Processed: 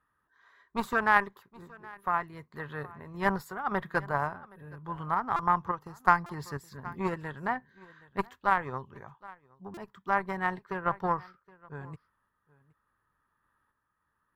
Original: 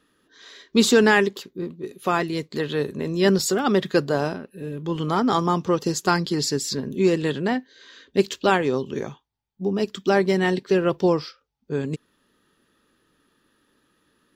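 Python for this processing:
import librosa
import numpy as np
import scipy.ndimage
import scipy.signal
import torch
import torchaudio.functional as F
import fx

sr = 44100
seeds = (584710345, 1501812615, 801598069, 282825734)

p1 = fx.cheby_harmonics(x, sr, harmonics=(3,), levels_db=(-13,), full_scale_db=-4.0)
p2 = fx.curve_eq(p1, sr, hz=(100.0, 280.0, 480.0, 980.0, 1900.0, 2700.0, 5000.0, 7100.0, 12000.0), db=(0, -17, -14, 4, -4, -17, -23, -22, -9))
p3 = p2 + fx.echo_single(p2, sr, ms=769, db=-22.0, dry=0)
p4 = fx.tremolo_random(p3, sr, seeds[0], hz=3.5, depth_pct=55)
p5 = fx.rider(p4, sr, range_db=4, speed_s=0.5)
p6 = p4 + F.gain(torch.from_numpy(p5), 0.0).numpy()
y = fx.buffer_glitch(p6, sr, at_s=(5.36, 6.26, 9.74), block=128, repeats=10)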